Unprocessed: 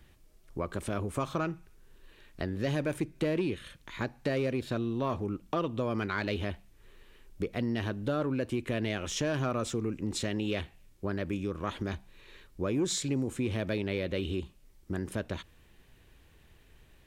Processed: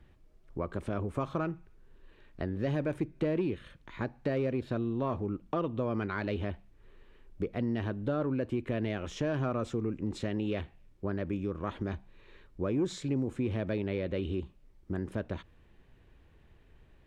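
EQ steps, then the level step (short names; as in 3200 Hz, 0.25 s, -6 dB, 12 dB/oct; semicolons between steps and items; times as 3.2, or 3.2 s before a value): LPF 1400 Hz 6 dB/oct; 0.0 dB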